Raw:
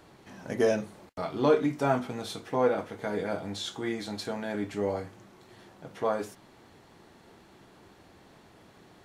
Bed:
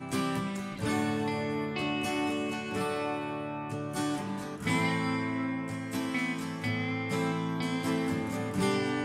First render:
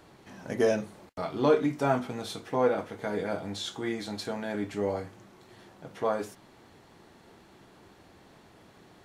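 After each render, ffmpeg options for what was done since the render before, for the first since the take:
-af anull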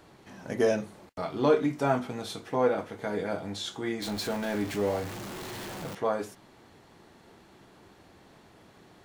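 -filter_complex "[0:a]asettb=1/sr,asplit=3[s0][s1][s2];[s0]atrim=end=4.024[s3];[s1]atrim=start=4.02:end=5.95,asetpts=PTS-STARTPTS,afade=t=in:d=0.004:c=qsin,afade=t=out:st=1.926:d=0.004:c=qsin,aeval=exprs='val(0)+0.5*0.0188*sgn(val(0))':c=same[s4];[s2]atrim=start=5.946[s5];[s3][s4]acrossfade=d=0.004:c1=hsin:c2=qsin[s6];[s6][s5]acrossfade=d=0.004:c1=qsin:c2=hsin"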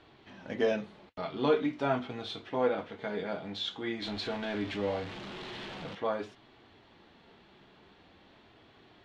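-af "lowpass=f=3400:t=q:w=2.1,flanger=delay=2.7:depth=2.2:regen=-63:speed=0.46:shape=sinusoidal"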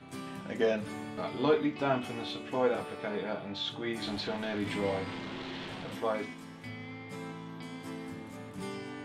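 -filter_complex "[1:a]volume=0.266[s0];[0:a][s0]amix=inputs=2:normalize=0"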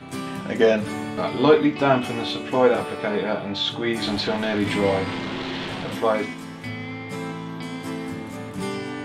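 -af "volume=3.55"

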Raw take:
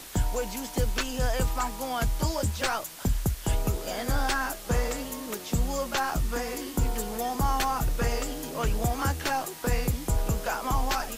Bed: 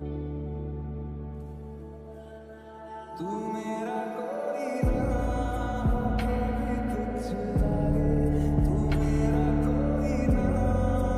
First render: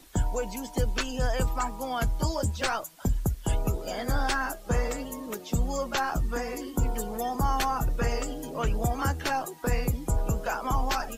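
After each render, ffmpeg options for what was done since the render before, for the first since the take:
-af "afftdn=nr=13:nf=-41"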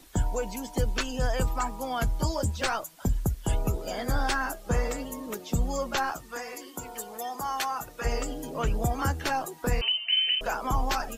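-filter_complex "[0:a]asettb=1/sr,asplit=3[s0][s1][s2];[s0]atrim=end=6.124[s3];[s1]atrim=start=6.12:end=8.05,asetpts=PTS-STARTPTS,afade=t=in:d=0.004:c=qsin,afade=t=out:st=1.926:d=0.004:c=qsin,highpass=f=890:p=1[s4];[s2]atrim=start=8.046[s5];[s3][s4]acrossfade=d=0.004:c1=hsin:c2=qsin[s6];[s6][s5]acrossfade=d=0.004:c1=qsin:c2=hsin,asettb=1/sr,asplit=3[s7][s8][s9];[s7]atrim=end=9.814[s10];[s8]atrim=start=9.81:end=10.41,asetpts=PTS-STARTPTS,afade=t=in:d=0.004:c=qsin,afade=t=out:st=0.596:d=0.004:c=qsin,lowpass=f=2600:t=q:w=0.5098,lowpass=f=2600:t=q:w=0.6013,lowpass=f=2600:t=q:w=0.9,lowpass=f=2600:t=q:w=2.563,afreqshift=-3100[s11];[s9]atrim=start=10.406[s12];[s10][s11]acrossfade=d=0.004:c1=hsin:c2=qsin[s13];[s13][s12]acrossfade=d=0.004:c1=qsin:c2=hsin"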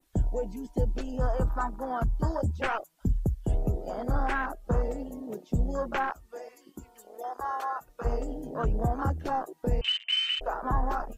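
-af "afwtdn=0.0316,adynamicequalizer=threshold=0.00355:dfrequency=4700:dqfactor=0.71:tfrequency=4700:tqfactor=0.71:attack=5:release=100:ratio=0.375:range=3.5:mode=cutabove:tftype=bell"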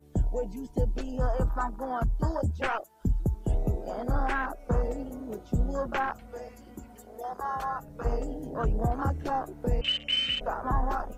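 -filter_complex "[1:a]volume=0.0794[s0];[0:a][s0]amix=inputs=2:normalize=0"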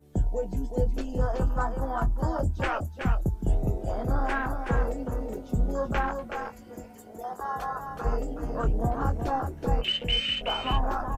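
-filter_complex "[0:a]asplit=2[s0][s1];[s1]adelay=22,volume=0.316[s2];[s0][s2]amix=inputs=2:normalize=0,aecho=1:1:373:0.501"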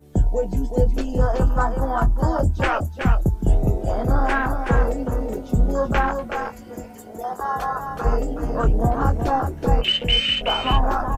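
-af "volume=2.37"

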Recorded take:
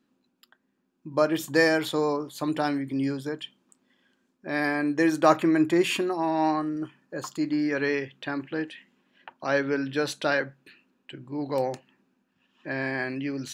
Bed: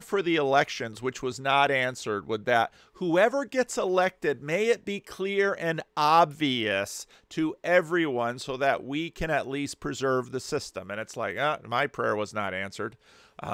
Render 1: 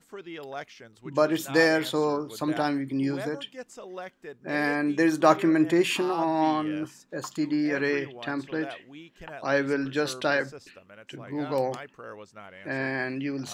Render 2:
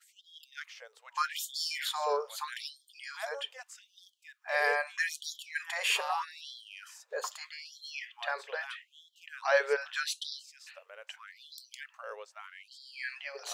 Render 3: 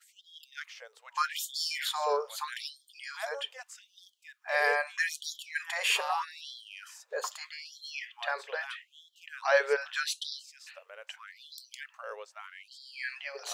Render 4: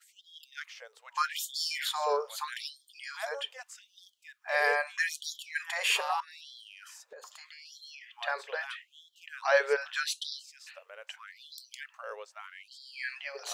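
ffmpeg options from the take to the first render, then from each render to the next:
-filter_complex "[1:a]volume=0.178[s0];[0:a][s0]amix=inputs=2:normalize=0"
-af "afftfilt=real='re*gte(b*sr/1024,400*pow(3200/400,0.5+0.5*sin(2*PI*0.8*pts/sr)))':imag='im*gte(b*sr/1024,400*pow(3200/400,0.5+0.5*sin(2*PI*0.8*pts/sr)))':win_size=1024:overlap=0.75"
-af "volume=1.19"
-filter_complex "[0:a]asettb=1/sr,asplit=3[s0][s1][s2];[s0]atrim=end=6.204[s3];[s1]atrim=start=6.2:end=8.21,asetpts=PTS-STARTPTS,afade=t=in:d=0.004:c=qsin,afade=t=out:st=2.006:d=0.004:c=qsin,acompressor=threshold=0.00562:ratio=10:attack=3.2:release=140:knee=1:detection=peak[s4];[s2]atrim=start=8.206[s5];[s3][s4]acrossfade=d=0.004:c1=hsin:c2=qsin[s6];[s6][s5]acrossfade=d=0.004:c1=qsin:c2=hsin"

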